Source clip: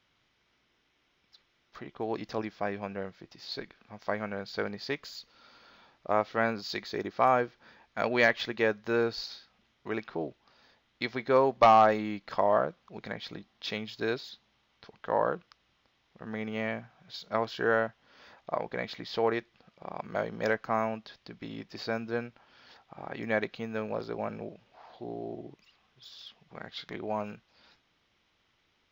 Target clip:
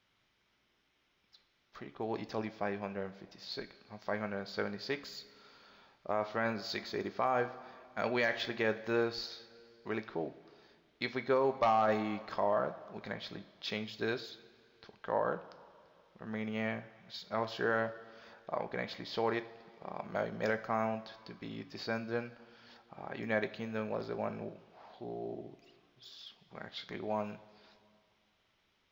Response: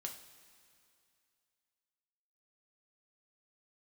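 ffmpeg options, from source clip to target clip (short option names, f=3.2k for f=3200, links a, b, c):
-filter_complex "[0:a]asplit=2[a][b];[1:a]atrim=start_sample=2205,asetrate=48510,aresample=44100[c];[b][c]afir=irnorm=-1:irlink=0,volume=2.5dB[d];[a][d]amix=inputs=2:normalize=0,alimiter=limit=-12.5dB:level=0:latency=1:release=21,volume=-8dB"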